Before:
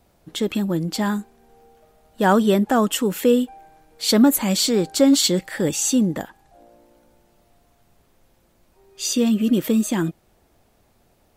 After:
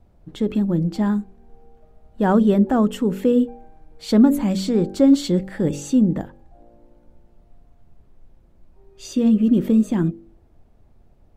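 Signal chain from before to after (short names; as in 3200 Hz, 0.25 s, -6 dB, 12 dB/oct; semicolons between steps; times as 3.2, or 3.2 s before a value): tilt -3.5 dB/oct; de-hum 47.78 Hz, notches 12; gain -4.5 dB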